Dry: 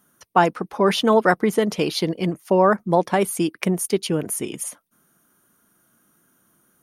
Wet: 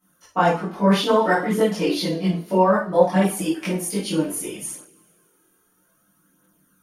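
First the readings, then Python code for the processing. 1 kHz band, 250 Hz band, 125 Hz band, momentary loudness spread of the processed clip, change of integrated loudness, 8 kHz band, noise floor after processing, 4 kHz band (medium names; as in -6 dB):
-1.0 dB, +1.0 dB, +1.5 dB, 10 LU, 0.0 dB, -1.5 dB, -64 dBFS, -0.5 dB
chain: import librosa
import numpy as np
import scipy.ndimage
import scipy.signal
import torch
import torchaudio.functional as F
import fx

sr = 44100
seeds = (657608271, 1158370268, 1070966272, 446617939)

y = fx.rev_double_slope(x, sr, seeds[0], early_s=0.37, late_s=2.3, knee_db=-27, drr_db=-6.0)
y = fx.chorus_voices(y, sr, voices=2, hz=0.31, base_ms=22, depth_ms=2.7, mix_pct=65)
y = F.gain(torch.from_numpy(y), -5.0).numpy()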